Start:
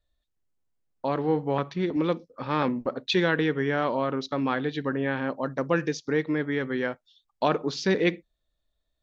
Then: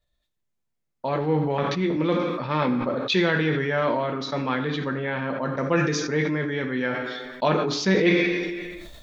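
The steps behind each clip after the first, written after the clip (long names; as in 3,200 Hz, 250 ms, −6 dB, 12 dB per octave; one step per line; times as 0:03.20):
on a send at −1.5 dB: convolution reverb RT60 1.1 s, pre-delay 3 ms
on the sum: level that may fall only so fast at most 31 dB per second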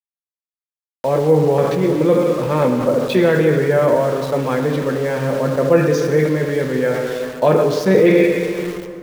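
octave-band graphic EQ 125/500/4,000 Hz +7/+11/−5 dB
centre clipping without the shift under −30 dBFS
dense smooth reverb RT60 2.3 s, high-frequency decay 0.35×, pre-delay 110 ms, DRR 8.5 dB
level +1 dB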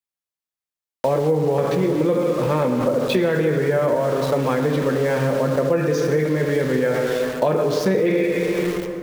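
downward compressor, threshold −19 dBFS, peak gain reduction 11.5 dB
level +3 dB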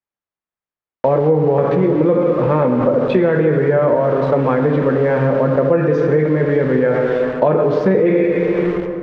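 low-pass filter 1,800 Hz 12 dB per octave
level +5 dB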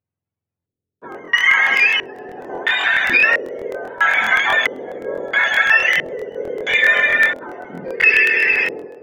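frequency axis turned over on the octave scale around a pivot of 950 Hz
auto-filter low-pass square 0.75 Hz 430–2,400 Hz
regular buffer underruns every 0.13 s, samples 1,024, repeat, from 0:00.58
level +1 dB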